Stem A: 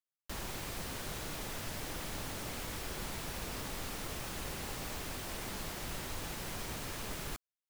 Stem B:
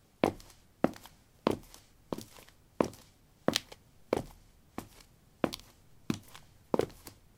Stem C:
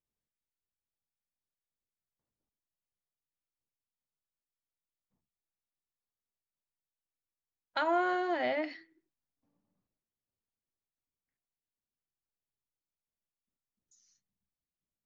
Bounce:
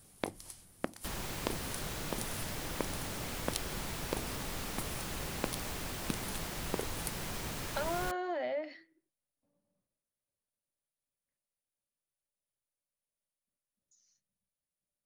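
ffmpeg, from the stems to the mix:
-filter_complex "[0:a]adelay=750,volume=1.12[s0];[1:a]highshelf=f=4800:g=8.5,volume=1[s1];[2:a]equalizer=f=570:t=o:w=0.23:g=12.5,volume=0.668[s2];[s1][s2]amix=inputs=2:normalize=0,equalizer=f=9700:t=o:w=0.27:g=14,acompressor=threshold=0.0224:ratio=6,volume=1[s3];[s0][s3]amix=inputs=2:normalize=0,equalizer=f=160:t=o:w=0.77:g=2.5"

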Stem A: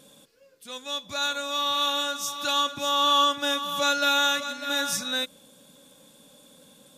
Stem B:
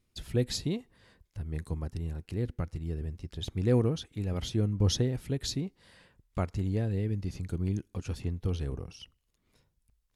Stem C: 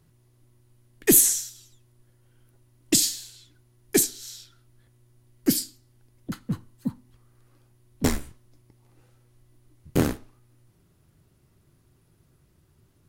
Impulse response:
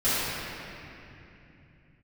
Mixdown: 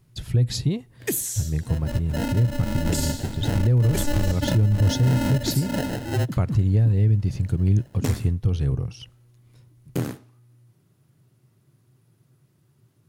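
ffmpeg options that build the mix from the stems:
-filter_complex "[0:a]highshelf=f=5900:g=-7.5,acrusher=samples=38:mix=1:aa=0.000001,adelay=1000,volume=0.562[s0];[1:a]volume=0.944[s1];[2:a]highpass=160,acompressor=threshold=0.0794:ratio=6,volume=0.422[s2];[s0][s1][s2]amix=inputs=3:normalize=0,equalizer=f=120:t=o:w=0.67:g=14.5,acontrast=47,alimiter=limit=0.251:level=0:latency=1:release=176"

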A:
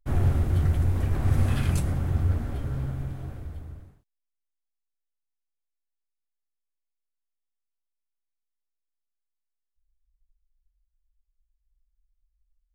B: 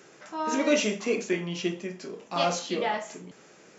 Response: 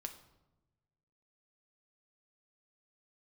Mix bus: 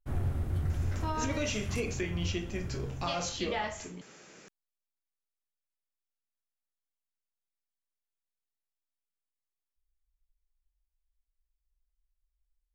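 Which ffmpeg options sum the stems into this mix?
-filter_complex "[0:a]volume=0.398[s0];[1:a]equalizer=f=510:t=o:w=2.8:g=-4.5,acontrast=85,adelay=700,volume=0.562[s1];[s0][s1]amix=inputs=2:normalize=0,alimiter=limit=0.075:level=0:latency=1:release=286"

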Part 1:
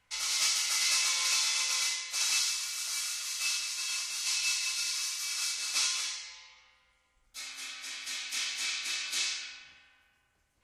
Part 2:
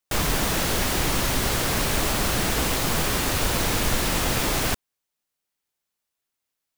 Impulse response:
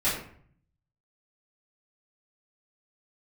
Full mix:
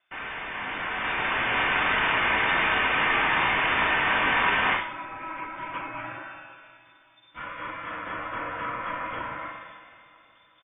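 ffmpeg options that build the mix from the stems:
-filter_complex "[0:a]acompressor=threshold=0.02:ratio=6,volume=0.794,asplit=2[s0][s1];[s1]volume=0.119[s2];[1:a]highpass=1400,asoftclip=type=hard:threshold=0.0501,volume=0.316,asplit=2[s3][s4];[s4]volume=0.668[s5];[2:a]atrim=start_sample=2205[s6];[s5][s6]afir=irnorm=-1:irlink=0[s7];[s2]aecho=0:1:373|746|1119|1492|1865|2238|2611|2984:1|0.53|0.281|0.149|0.0789|0.0418|0.0222|0.0117[s8];[s0][s3][s7][s8]amix=inputs=4:normalize=0,dynaudnorm=f=470:g=5:m=4.22,lowpass=f=3100:t=q:w=0.5098,lowpass=f=3100:t=q:w=0.6013,lowpass=f=3100:t=q:w=0.9,lowpass=f=3100:t=q:w=2.563,afreqshift=-3600"

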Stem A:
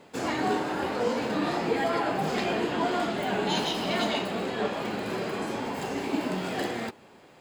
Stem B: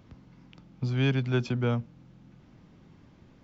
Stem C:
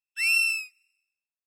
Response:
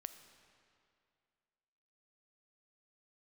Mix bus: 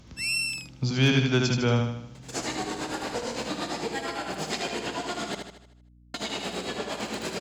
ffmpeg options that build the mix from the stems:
-filter_complex "[0:a]acompressor=threshold=0.0355:ratio=6,tremolo=f=8.8:d=0.91,adelay=2150,volume=1.19,asplit=3[s0][s1][s2];[s0]atrim=end=5.35,asetpts=PTS-STARTPTS,afade=t=out:st=5.346:d=0.004:c=hsin[s3];[s1]atrim=start=5.35:end=6.14,asetpts=PTS-STARTPTS,volume=0[s4];[s2]atrim=start=6.14,asetpts=PTS-STARTPTS,afade=t=in:d=0.004:c=hsin[s5];[s3][s4][s5]concat=n=3:v=0:a=1,asplit=2[s6][s7];[s7]volume=0.531[s8];[1:a]volume=1.33,asplit=2[s9][s10];[s10]volume=0.668[s11];[2:a]volume=0.251[s12];[s8][s11]amix=inputs=2:normalize=0,aecho=0:1:77|154|231|308|385|462|539:1|0.48|0.23|0.111|0.0531|0.0255|0.0122[s13];[s6][s9][s12][s13]amix=inputs=4:normalize=0,equalizer=f=6700:t=o:w=1.8:g=14,asoftclip=type=hard:threshold=0.224,aeval=exprs='val(0)+0.002*(sin(2*PI*60*n/s)+sin(2*PI*2*60*n/s)/2+sin(2*PI*3*60*n/s)/3+sin(2*PI*4*60*n/s)/4+sin(2*PI*5*60*n/s)/5)':c=same"

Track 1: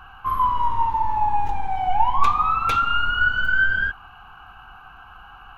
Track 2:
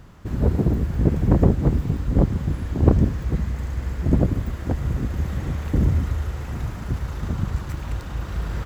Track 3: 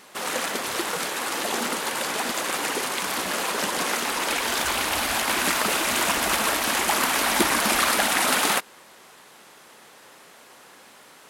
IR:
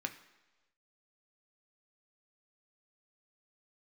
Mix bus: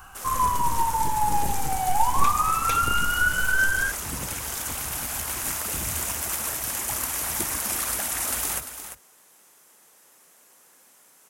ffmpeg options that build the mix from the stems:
-filter_complex "[0:a]volume=0.708[s0];[1:a]volume=0.126,asplit=2[s1][s2];[s2]volume=0.188[s3];[2:a]volume=0.237,asplit=2[s4][s5];[s5]volume=0.299[s6];[s3][s6]amix=inputs=2:normalize=0,aecho=0:1:346:1[s7];[s0][s1][s4][s7]amix=inputs=4:normalize=0,aexciter=amount=4.6:drive=2.9:freq=5700"

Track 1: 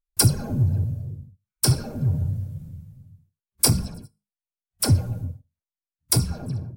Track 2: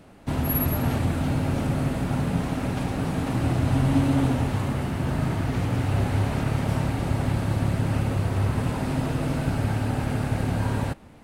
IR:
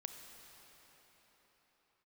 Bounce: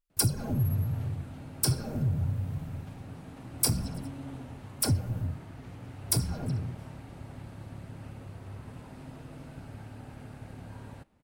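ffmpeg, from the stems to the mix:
-filter_complex "[0:a]acompressor=threshold=0.0316:ratio=2,volume=1.06[s0];[1:a]adelay=100,volume=0.106[s1];[s0][s1]amix=inputs=2:normalize=0"

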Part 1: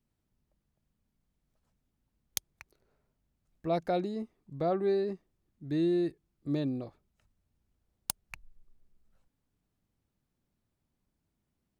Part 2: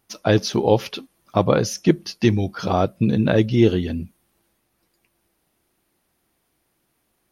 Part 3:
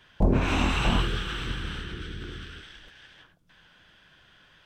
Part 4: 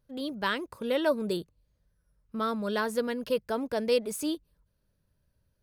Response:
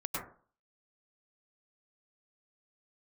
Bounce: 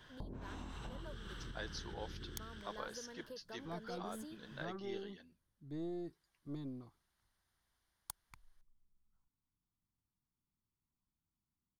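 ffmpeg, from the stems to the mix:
-filter_complex "[0:a]aecho=1:1:0.9:0.73,aeval=exprs='0.266*(cos(1*acos(clip(val(0)/0.266,-1,1)))-cos(1*PI/2))+0.0237*(cos(6*acos(clip(val(0)/0.266,-1,1)))-cos(6*PI/2))':c=same,volume=0.178[s0];[1:a]bandpass=f=3200:t=q:w=0.6:csg=0,adelay=1300,volume=0.398,afade=t=in:st=5.69:d=0.25:silence=0.281838[s1];[2:a]equalizer=f=1500:w=0.73:g=-5.5,acompressor=threshold=0.0251:ratio=6,volume=1.06[s2];[3:a]volume=0.168[s3];[s2][s3]amix=inputs=2:normalize=0,acompressor=threshold=0.00282:ratio=2.5,volume=1[s4];[s0][s1][s4]amix=inputs=3:normalize=0,equalizer=f=1000:t=o:w=0.33:g=4,equalizer=f=1600:t=o:w=0.33:g=4,equalizer=f=2500:t=o:w=0.33:g=-11"

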